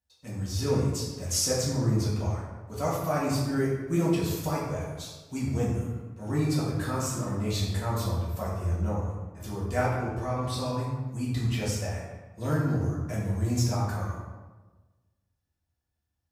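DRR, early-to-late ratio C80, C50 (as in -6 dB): -8.0 dB, 3.5 dB, 1.0 dB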